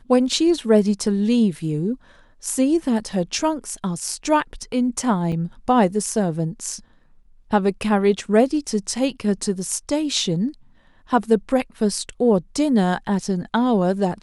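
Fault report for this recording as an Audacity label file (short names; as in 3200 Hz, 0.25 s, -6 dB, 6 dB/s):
5.320000	5.320000	gap 3.3 ms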